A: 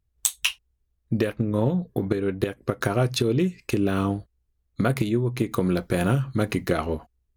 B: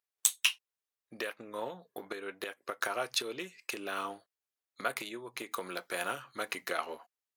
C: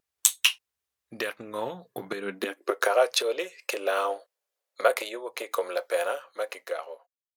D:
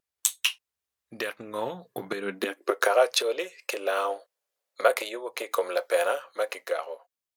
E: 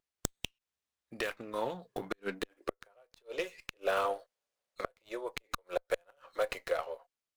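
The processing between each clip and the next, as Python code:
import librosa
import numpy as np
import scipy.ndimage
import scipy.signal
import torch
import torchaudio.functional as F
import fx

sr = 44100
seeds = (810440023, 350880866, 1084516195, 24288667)

y1 = scipy.signal.sosfilt(scipy.signal.butter(2, 830.0, 'highpass', fs=sr, output='sos'), x)
y1 = F.gain(torch.from_numpy(y1), -3.5).numpy()
y2 = fx.fade_out_tail(y1, sr, length_s=2.36)
y2 = fx.filter_sweep_highpass(y2, sr, from_hz=67.0, to_hz=530.0, start_s=1.61, end_s=2.94, q=5.0)
y2 = fx.vibrato(y2, sr, rate_hz=2.8, depth_cents=25.0)
y2 = F.gain(torch.from_numpy(y2), 6.0).numpy()
y3 = fx.rider(y2, sr, range_db=4, speed_s=2.0)
y4 = fx.gate_flip(y3, sr, shuts_db=-15.0, range_db=-39)
y4 = fx.running_max(y4, sr, window=3)
y4 = F.gain(torch.from_numpy(y4), -3.5).numpy()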